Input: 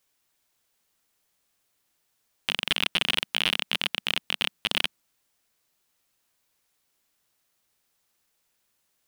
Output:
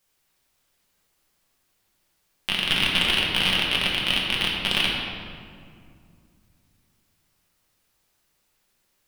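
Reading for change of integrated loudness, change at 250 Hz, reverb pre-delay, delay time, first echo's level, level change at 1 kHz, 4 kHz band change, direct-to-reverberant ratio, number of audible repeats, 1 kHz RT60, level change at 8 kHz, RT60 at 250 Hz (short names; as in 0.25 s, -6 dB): +4.5 dB, +8.0 dB, 5 ms, none, none, +5.5 dB, +4.5 dB, -3.5 dB, none, 2.1 s, +2.5 dB, 3.2 s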